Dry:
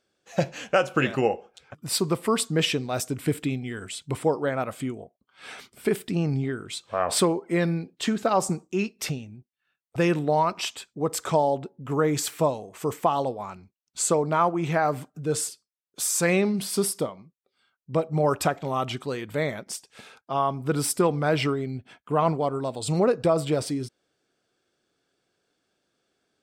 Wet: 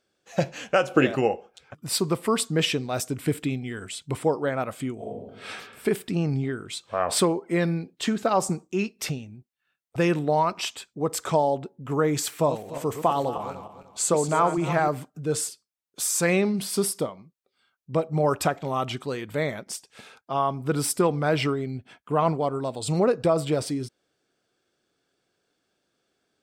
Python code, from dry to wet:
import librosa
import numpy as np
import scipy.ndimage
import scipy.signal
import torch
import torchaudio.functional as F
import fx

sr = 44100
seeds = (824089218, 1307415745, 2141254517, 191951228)

y = fx.spec_box(x, sr, start_s=0.89, length_s=0.28, low_hz=240.0, high_hz=800.0, gain_db=6)
y = fx.reverb_throw(y, sr, start_s=4.95, length_s=0.53, rt60_s=1.3, drr_db=-8.0)
y = fx.reverse_delay_fb(y, sr, ms=150, feedback_pct=48, wet_db=-9, at=(12.33, 14.88))